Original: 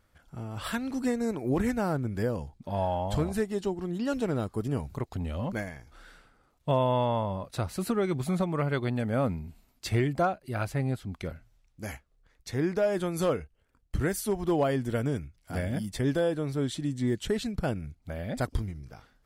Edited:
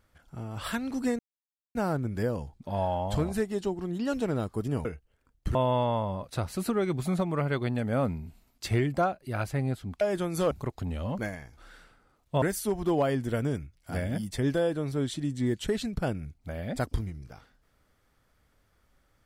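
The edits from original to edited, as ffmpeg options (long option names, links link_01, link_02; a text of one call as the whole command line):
ffmpeg -i in.wav -filter_complex "[0:a]asplit=8[link_01][link_02][link_03][link_04][link_05][link_06][link_07][link_08];[link_01]atrim=end=1.19,asetpts=PTS-STARTPTS,afade=type=out:start_time=1.186:duration=0.004:curve=hsin[link_09];[link_02]atrim=start=1.19:end=1.75,asetpts=PTS-STARTPTS,volume=0[link_10];[link_03]atrim=start=1.75:end=4.852,asetpts=PTS-STARTPTS,afade=type=in:duration=0.004:curve=hsin[link_11];[link_04]atrim=start=13.328:end=14.032[link_12];[link_05]atrim=start=6.758:end=11.222[link_13];[link_06]atrim=start=12.828:end=13.332[link_14];[link_07]atrim=start=4.848:end=6.762[link_15];[link_08]atrim=start=14.028[link_16];[link_09][link_10][link_11]concat=n=3:v=0:a=1[link_17];[link_17][link_12]acrossfade=duration=0.004:curve1=hsin:curve2=hsin[link_18];[link_18][link_13]acrossfade=duration=0.004:curve1=hsin:curve2=hsin[link_19];[link_19][link_14]acrossfade=duration=0.004:curve1=hsin:curve2=hsin[link_20];[link_20][link_15]acrossfade=duration=0.004:curve1=hsin:curve2=hsin[link_21];[link_21][link_16]acrossfade=duration=0.004:curve1=hsin:curve2=hsin" out.wav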